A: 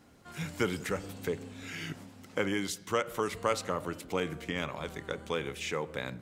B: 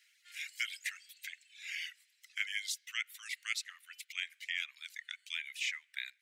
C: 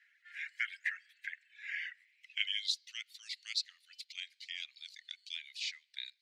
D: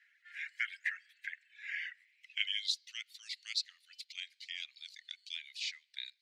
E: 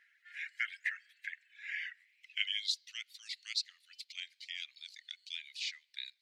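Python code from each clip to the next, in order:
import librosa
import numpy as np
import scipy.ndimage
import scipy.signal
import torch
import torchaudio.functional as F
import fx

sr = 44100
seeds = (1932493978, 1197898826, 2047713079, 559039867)

y1 = fx.dereverb_blind(x, sr, rt60_s=1.3)
y1 = scipy.signal.sosfilt(scipy.signal.butter(8, 1900.0, 'highpass', fs=sr, output='sos'), y1)
y1 = fx.high_shelf(y1, sr, hz=3200.0, db=-10.0)
y1 = y1 * 10.0 ** (7.5 / 20.0)
y2 = fx.filter_sweep_bandpass(y1, sr, from_hz=1700.0, to_hz=4400.0, start_s=1.9, end_s=2.79, q=5.6)
y2 = y2 * 10.0 ** (10.0 / 20.0)
y3 = y2
y4 = fx.wow_flutter(y3, sr, seeds[0], rate_hz=2.1, depth_cents=24.0)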